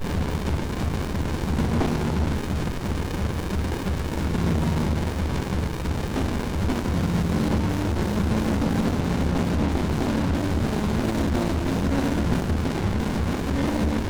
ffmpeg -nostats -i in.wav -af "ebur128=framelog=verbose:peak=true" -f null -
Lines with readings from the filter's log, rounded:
Integrated loudness:
  I:         -25.0 LUFS
  Threshold: -35.0 LUFS
Loudness range:
  LRA:         2.3 LU
  Threshold: -44.9 LUFS
  LRA low:   -26.2 LUFS
  LRA high:  -23.9 LUFS
True peak:
  Peak:      -10.8 dBFS